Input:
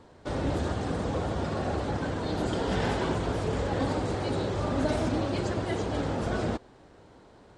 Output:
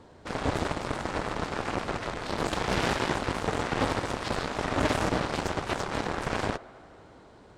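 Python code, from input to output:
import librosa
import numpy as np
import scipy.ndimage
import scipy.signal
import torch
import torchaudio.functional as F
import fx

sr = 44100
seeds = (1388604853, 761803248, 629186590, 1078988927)

y = fx.echo_wet_bandpass(x, sr, ms=82, feedback_pct=82, hz=1300.0, wet_db=-18.5)
y = fx.cheby_harmonics(y, sr, harmonics=(5, 7), levels_db=(-18, -8), full_scale_db=-15.0)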